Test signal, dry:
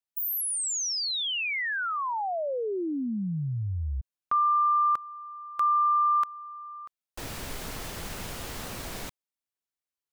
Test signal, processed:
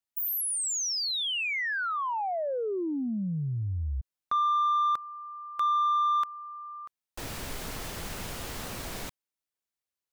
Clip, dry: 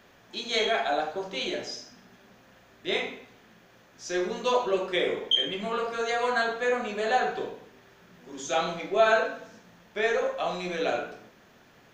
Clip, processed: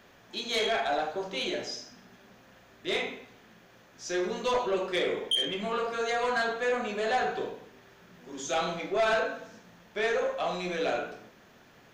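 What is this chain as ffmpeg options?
ffmpeg -i in.wav -af "asoftclip=type=tanh:threshold=-21dB" out.wav

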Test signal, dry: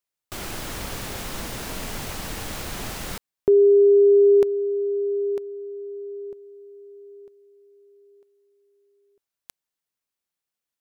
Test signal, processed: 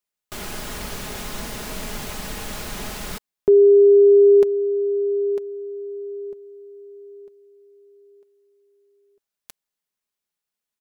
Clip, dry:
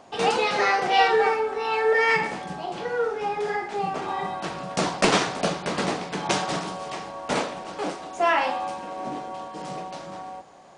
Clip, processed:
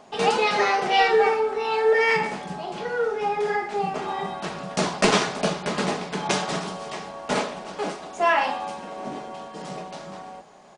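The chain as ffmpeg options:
ffmpeg -i in.wav -af "aecho=1:1:4.8:0.4" out.wav

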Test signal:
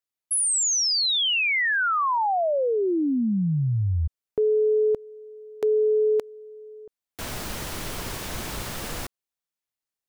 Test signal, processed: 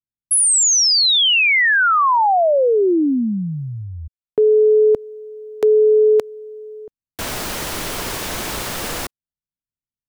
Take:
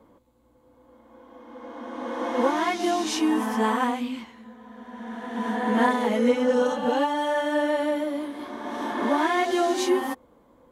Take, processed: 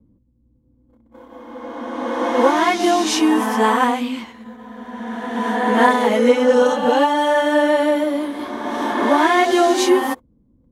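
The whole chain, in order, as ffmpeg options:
ffmpeg -i in.wav -filter_complex "[0:a]acrossover=split=240[link_01][link_02];[link_01]acompressor=threshold=-39dB:ratio=6:release=506[link_03];[link_02]agate=range=-33dB:threshold=-53dB:ratio=16:release=75:detection=peak[link_04];[link_03][link_04]amix=inputs=2:normalize=0,volume=8.5dB" out.wav

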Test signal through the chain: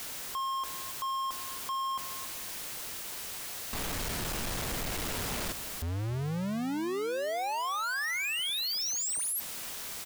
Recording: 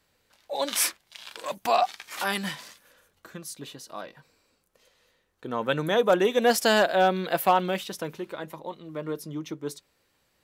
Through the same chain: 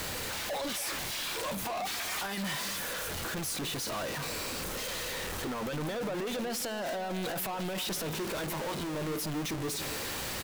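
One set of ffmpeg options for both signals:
ffmpeg -i in.wav -filter_complex "[0:a]aeval=exprs='val(0)+0.5*0.0473*sgn(val(0))':channel_layout=same,alimiter=limit=-21.5dB:level=0:latency=1:release=17,asoftclip=type=tanh:threshold=-28.5dB,asplit=2[link_01][link_02];[link_02]adelay=276,lowpass=frequency=3500:poles=1,volume=-12.5dB,asplit=2[link_03][link_04];[link_04]adelay=276,lowpass=frequency=3500:poles=1,volume=0.26,asplit=2[link_05][link_06];[link_06]adelay=276,lowpass=frequency=3500:poles=1,volume=0.26[link_07];[link_01][link_03][link_05][link_07]amix=inputs=4:normalize=0,volume=-3dB" out.wav

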